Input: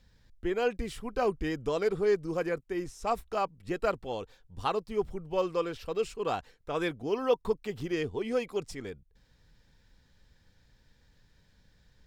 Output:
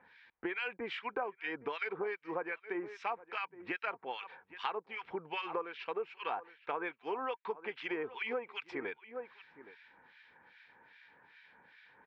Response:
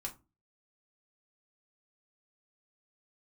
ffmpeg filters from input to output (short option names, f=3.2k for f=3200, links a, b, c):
-filter_complex "[0:a]highpass=480,equalizer=f=580:t=q:w=4:g=-6,equalizer=f=910:t=q:w=4:g=8,equalizer=f=1.6k:t=q:w=4:g=6,equalizer=f=2.3k:t=q:w=4:g=9,lowpass=f=3.1k:w=0.5412,lowpass=f=3.1k:w=1.3066,asplit=2[a][b];[b]adelay=816.3,volume=-19dB,highshelf=f=4k:g=-18.4[c];[a][c]amix=inputs=2:normalize=0,acrossover=split=1500[d][e];[d]aeval=exprs='val(0)*(1-1/2+1/2*cos(2*PI*2.5*n/s))':c=same[f];[e]aeval=exprs='val(0)*(1-1/2-1/2*cos(2*PI*2.5*n/s))':c=same[g];[f][g]amix=inputs=2:normalize=0,acompressor=threshold=-48dB:ratio=6,volume=12.5dB"